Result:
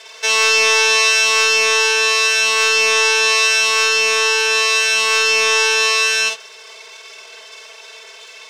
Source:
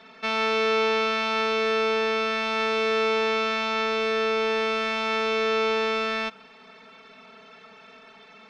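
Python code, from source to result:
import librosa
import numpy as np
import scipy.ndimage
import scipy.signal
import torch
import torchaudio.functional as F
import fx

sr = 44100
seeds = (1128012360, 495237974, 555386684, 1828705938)

p1 = fx.lower_of_two(x, sr, delay_ms=1.9)
p2 = scipy.signal.sosfilt(scipy.signal.butter(4, 360.0, 'highpass', fs=sr, output='sos'), p1)
p3 = fx.peak_eq(p2, sr, hz=6500.0, db=13.0, octaves=2.1)
p4 = 10.0 ** (-15.5 / 20.0) * np.tanh(p3 / 10.0 ** (-15.5 / 20.0))
p5 = p3 + (p4 * librosa.db_to_amplitude(-7.0))
p6 = fx.room_early_taps(p5, sr, ms=(49, 64), db=(-5.0, -11.0))
y = p6 * librosa.db_to_amplitude(3.5)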